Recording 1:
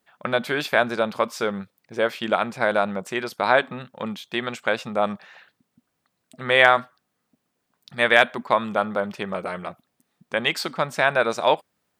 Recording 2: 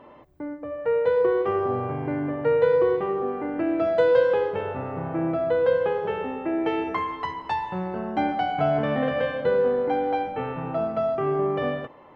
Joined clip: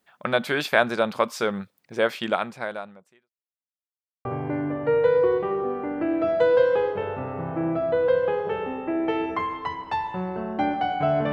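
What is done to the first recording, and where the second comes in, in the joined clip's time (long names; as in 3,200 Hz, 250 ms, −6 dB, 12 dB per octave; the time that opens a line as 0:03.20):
recording 1
0:02.19–0:03.32: fade out quadratic
0:03.32–0:04.25: silence
0:04.25: continue with recording 2 from 0:01.83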